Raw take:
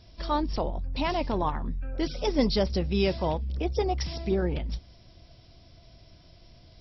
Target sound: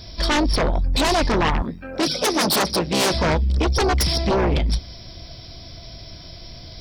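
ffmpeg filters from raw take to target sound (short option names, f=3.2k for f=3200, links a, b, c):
-filter_complex "[0:a]highshelf=f=3.2k:g=9,bandreject=f=2.8k:w=9,aeval=exprs='0.266*sin(PI/2*4.47*val(0)/0.266)':c=same,asettb=1/sr,asplit=3[a][b][c];[a]atrim=end=1.624[d];[b]atrim=start=1.62:end=3.14,asetpts=PTS-STARTPTS,afade=t=in:d=0.004:c=qsin,afade=t=out:st=1.516:d=0.004:c=qsin,highpass=170[e];[c]atrim=start=3.136[f];[d][e]acrossfade=d=0.004:c1=hsin:c2=qsin[g];[g][f]acrossfade=d=0.004:c1=qsin:c2=hsin,volume=-3.5dB"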